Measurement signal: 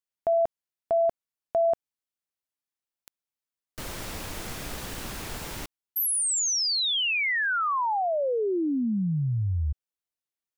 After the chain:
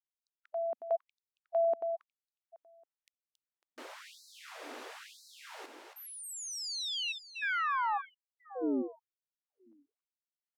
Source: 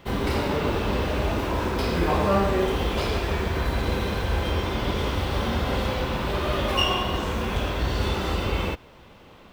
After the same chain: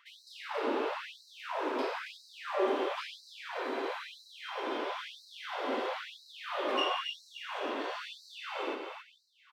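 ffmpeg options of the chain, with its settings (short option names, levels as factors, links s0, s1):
-filter_complex "[0:a]aemphasis=mode=reproduction:type=75fm,asplit=2[s0][s1];[s1]aecho=0:1:275|550|825|1100:0.501|0.18|0.065|0.0234[s2];[s0][s2]amix=inputs=2:normalize=0,afftfilt=real='re*gte(b*sr/1024,220*pow(3900/220,0.5+0.5*sin(2*PI*1*pts/sr)))':imag='im*gte(b*sr/1024,220*pow(3900/220,0.5+0.5*sin(2*PI*1*pts/sr)))':win_size=1024:overlap=0.75,volume=0.501"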